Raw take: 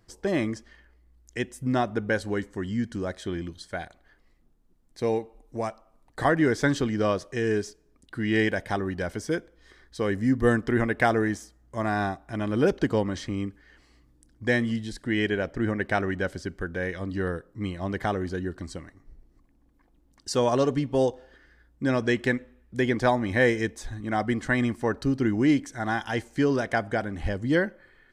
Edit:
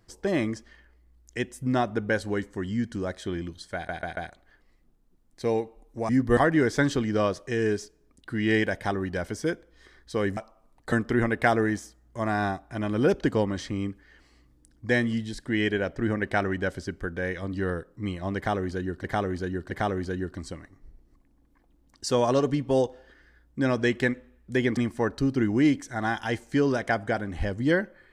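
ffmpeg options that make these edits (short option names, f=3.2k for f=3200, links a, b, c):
-filter_complex "[0:a]asplit=11[a][b][c][d][e][f][g][h][i][j][k];[a]atrim=end=3.892[l];[b]atrim=start=3.748:end=3.892[m];[c]atrim=start=3.748:end=3.892[n];[d]atrim=start=3.748:end=5.672[o];[e]atrim=start=10.218:end=10.502[p];[f]atrim=start=6.218:end=10.222[q];[g]atrim=start=5.668:end=6.222[r];[h]atrim=start=10.498:end=18.622[s];[i]atrim=start=17.948:end=18.622[t];[j]atrim=start=17.948:end=23.012[u];[k]atrim=start=24.608[v];[l][m]acrossfade=d=0.004:c1=hsin:c2=hsin[w];[w][n]acrossfade=d=0.004:c1=hsin:c2=hsin[x];[x][o]acrossfade=d=0.004:c1=hsin:c2=hsin[y];[y][p]acrossfade=d=0.004:c1=hsin:c2=hsin[z];[z][q]acrossfade=d=0.004:c1=hsin:c2=hsin[aa];[aa][r]acrossfade=d=0.004:c1=hsin:c2=hsin[ab];[ab][s]acrossfade=d=0.004:c1=hsin:c2=hsin[ac];[ac][t]acrossfade=d=0.004:c1=hsin:c2=hsin[ad];[ad][u]acrossfade=d=0.004:c1=hsin:c2=hsin[ae];[ae][v]acrossfade=d=0.004:c1=hsin:c2=hsin"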